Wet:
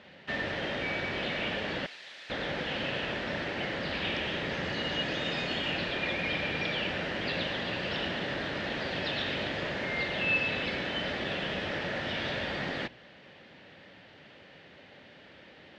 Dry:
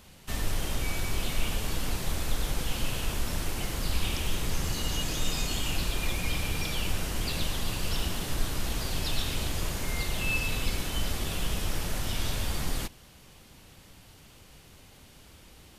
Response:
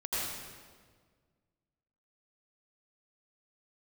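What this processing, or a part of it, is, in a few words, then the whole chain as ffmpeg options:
kitchen radio: -filter_complex "[0:a]highpass=180,equalizer=f=570:t=q:w=4:g=7,equalizer=f=1.1k:t=q:w=4:g=-5,equalizer=f=1.8k:t=q:w=4:g=9,lowpass=f=3.7k:w=0.5412,lowpass=f=3.7k:w=1.3066,bandreject=f=60.72:t=h:w=4,bandreject=f=121.44:t=h:w=4,asettb=1/sr,asplit=3[a][b][c];[a]atrim=end=1.864[d];[b]atrim=start=1.86:end=2.3,asetpts=PTS-STARTPTS,afade=t=in:d=0.004:c=qsin,afade=t=out:st=0.436:d=0.004:c=qsin,aderivative[e];[c]atrim=start=2.296[f];[d][e]acrossfade=d=0.004:c1=hsin:c2=qsin[g];[g][f]acrossfade=d=0.004:c1=qsin:c2=hsin,volume=2.5dB"

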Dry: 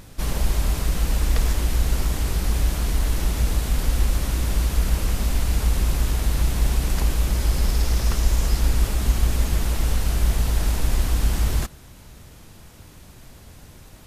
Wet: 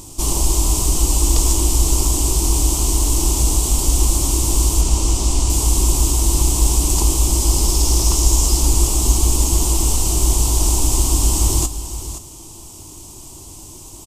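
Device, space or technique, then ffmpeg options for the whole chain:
exciter from parts: -filter_complex "[0:a]asplit=2[a][b];[b]adelay=21,volume=-12.5dB[c];[a][c]amix=inputs=2:normalize=0,asettb=1/sr,asplit=3[d][e][f];[d]atrim=end=4.814[g];[e]atrim=start=4.81:end=5.5,asetpts=PTS-STARTPTS,afade=t=in:d=0.004:c=qsin,afade=t=out:st=0.686:d=0.004:c=qsin,acrossover=split=8800[h][i];[i]acompressor=threshold=-55dB:ratio=4:attack=1:release=60[j];[h][j]amix=inputs=2:normalize=0[k];[f]atrim=start=5.496[l];[g][k]acrossfade=d=0.004:c1=hsin:c2=qsin[m];[m][l]acrossfade=d=0.004:c1=qsin:c2=hsin,asplit=2[n][o];[o]highpass=f=3k:w=0.5412,highpass=f=3k:w=1.3066,asoftclip=type=tanh:threshold=-28dB,highpass=2k,volume=-6dB[p];[n][p]amix=inputs=2:normalize=0,firequalizer=gain_entry='entry(120,0);entry(200,-5);entry(330,11);entry(490,-4);entry(970,7);entry(1600,-18);entry(3000,4);entry(5600,11);entry(7900,15);entry(11000,4)':delay=0.05:min_phase=1,aecho=1:1:521:0.266,volume=3dB"

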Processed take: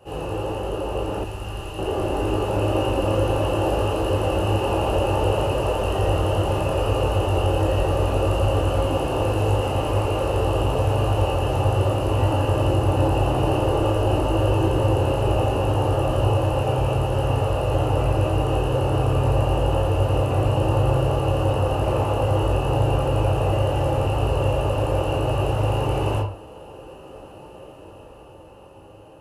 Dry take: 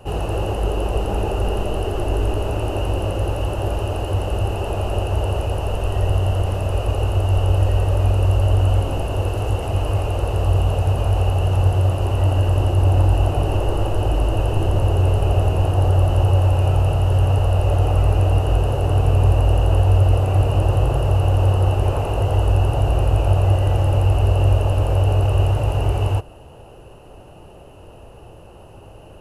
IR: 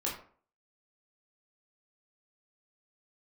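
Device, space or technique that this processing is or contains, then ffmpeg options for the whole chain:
far laptop microphone: -filter_complex "[1:a]atrim=start_sample=2205[a];[0:a][a]afir=irnorm=-1:irlink=0,highpass=f=110:p=1,dynaudnorm=f=350:g=11:m=11.5dB,asettb=1/sr,asplit=3[b][c][d];[b]atrim=end=1.244[e];[c]atrim=start=1.24:end=1.79,asetpts=PTS-STARTPTS,afade=t=in:d=0.004:c=qsin,afade=t=out:st=0.546:d=0.004:c=qsin,equalizer=f=450:t=o:w=2.4:g=-12.5[f];[d]atrim=start=1.786[g];[e][f]acrossfade=d=0.004:c1=hsin:c2=qsin[h];[h][g]acrossfade=d=0.004:c1=qsin:c2=hsin,volume=-7dB"

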